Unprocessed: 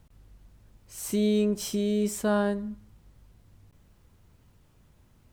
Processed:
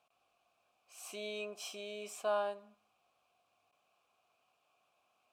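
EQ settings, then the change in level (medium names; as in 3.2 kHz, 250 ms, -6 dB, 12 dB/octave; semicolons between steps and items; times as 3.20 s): vowel filter a; tilt EQ +4 dB/octave; +5.0 dB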